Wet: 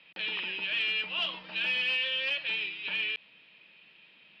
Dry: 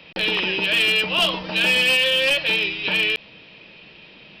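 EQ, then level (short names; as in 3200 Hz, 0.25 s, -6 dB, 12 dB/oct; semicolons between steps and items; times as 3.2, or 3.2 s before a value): air absorption 79 m; three-band isolator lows -15 dB, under 170 Hz, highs -23 dB, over 4000 Hz; passive tone stack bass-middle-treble 5-5-5; 0.0 dB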